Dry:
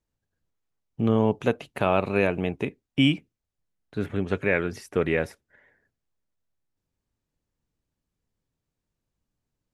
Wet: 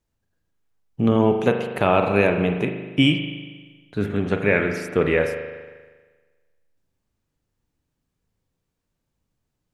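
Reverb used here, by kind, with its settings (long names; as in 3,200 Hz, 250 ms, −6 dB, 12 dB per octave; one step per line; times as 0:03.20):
spring reverb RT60 1.4 s, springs 39 ms, chirp 50 ms, DRR 4.5 dB
level +4 dB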